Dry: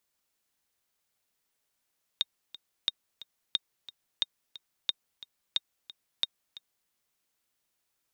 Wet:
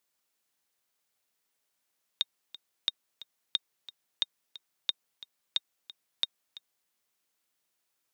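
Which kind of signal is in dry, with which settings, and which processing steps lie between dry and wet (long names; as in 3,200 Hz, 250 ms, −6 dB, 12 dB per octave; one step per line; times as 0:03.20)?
click track 179 BPM, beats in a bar 2, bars 7, 3,700 Hz, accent 17.5 dB −13 dBFS
high-pass filter 170 Hz 6 dB per octave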